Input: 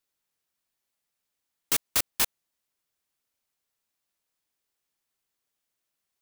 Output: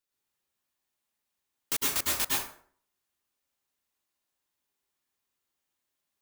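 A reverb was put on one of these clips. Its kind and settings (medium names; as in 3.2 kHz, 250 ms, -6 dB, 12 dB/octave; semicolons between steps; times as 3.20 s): plate-style reverb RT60 0.53 s, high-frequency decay 0.65×, pre-delay 95 ms, DRR -4.5 dB; trim -5.5 dB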